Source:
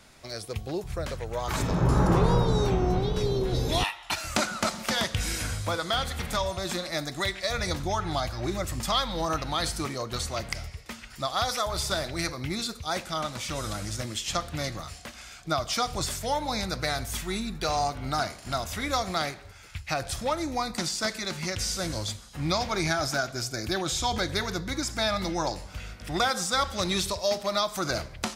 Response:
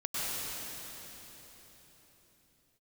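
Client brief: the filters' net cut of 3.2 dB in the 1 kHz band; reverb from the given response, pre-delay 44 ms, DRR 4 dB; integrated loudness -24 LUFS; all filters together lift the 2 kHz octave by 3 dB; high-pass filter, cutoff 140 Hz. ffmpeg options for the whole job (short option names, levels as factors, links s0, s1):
-filter_complex "[0:a]highpass=140,equalizer=f=1000:t=o:g=-6.5,equalizer=f=2000:t=o:g=6,asplit=2[s0][s1];[1:a]atrim=start_sample=2205,adelay=44[s2];[s1][s2]afir=irnorm=-1:irlink=0,volume=0.266[s3];[s0][s3]amix=inputs=2:normalize=0,volume=1.58"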